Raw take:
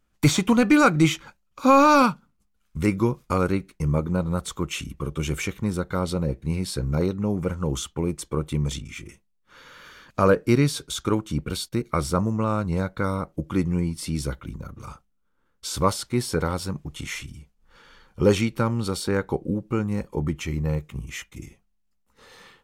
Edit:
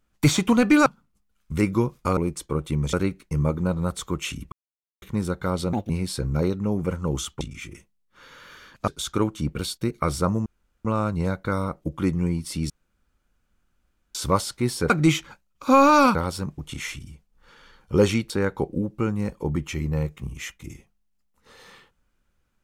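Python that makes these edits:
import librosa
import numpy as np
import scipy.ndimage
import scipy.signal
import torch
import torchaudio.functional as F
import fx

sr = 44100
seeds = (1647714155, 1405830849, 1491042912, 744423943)

y = fx.edit(x, sr, fx.move(start_s=0.86, length_s=1.25, to_s=16.42),
    fx.silence(start_s=5.01, length_s=0.5),
    fx.speed_span(start_s=6.22, length_s=0.26, speed=1.55),
    fx.move(start_s=7.99, length_s=0.76, to_s=3.42),
    fx.cut(start_s=10.22, length_s=0.57),
    fx.insert_room_tone(at_s=12.37, length_s=0.39),
    fx.room_tone_fill(start_s=14.22, length_s=1.45),
    fx.cut(start_s=18.57, length_s=0.45), tone=tone)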